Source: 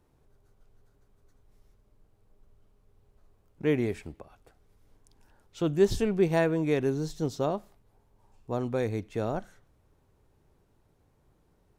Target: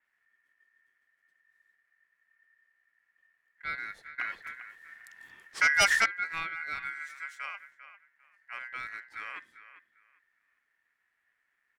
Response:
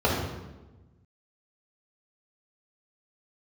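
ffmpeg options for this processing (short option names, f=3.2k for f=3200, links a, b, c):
-filter_complex "[0:a]bandreject=f=930:w=22,asplit=2[a][b];[b]adelay=398,lowpass=f=1.2k:p=1,volume=-12.5dB,asplit=2[c][d];[d]adelay=398,lowpass=f=1.2k:p=1,volume=0.23,asplit=2[e][f];[f]adelay=398,lowpass=f=1.2k:p=1,volume=0.23[g];[c][e][g]amix=inputs=3:normalize=0[h];[a][h]amix=inputs=2:normalize=0,aeval=exprs='val(0)*sin(2*PI*1800*n/s)':c=same,asettb=1/sr,asplit=3[i][j][k];[i]atrim=end=4.184[l];[j]atrim=start=4.18:end=6.06,asetpts=PTS-STARTPTS,afade=t=in:d=0.004:c=qsin,afade=t=out:st=1.876:d=0.004:c=qsin,aeval=exprs='0.355*sin(PI/2*4.47*val(0)/0.355)':c=same[m];[k]atrim=start=6.056[n];[l][m]acrossfade=d=0.004:c1=hsin:c2=qsin[o];[o][n]acrossfade=d=0.004:c1=qsin:c2=hsin,asettb=1/sr,asplit=3[p][q][r];[p]atrim=end=6.994[s];[q]atrim=start=6.99:end=7.57,asetpts=PTS-STARTPTS,afade=t=in:d=0.004:c=qsin,afade=t=out:st=0.576:d=0.004:c=qsin,highpass=f=490:p=1[t];[r]atrim=start=7.566[u];[s][t]acrossfade=d=0.004:c1=hsin:c2=qsin[v];[v][u]acrossfade=d=0.004:c1=qsin:c2=hsin,adynamicequalizer=threshold=0.0251:dfrequency=4700:dqfactor=0.7:tfrequency=4700:tqfactor=0.7:attack=5:release=100:ratio=0.375:range=2:mode=cutabove:tftype=highshelf,volume=-8dB"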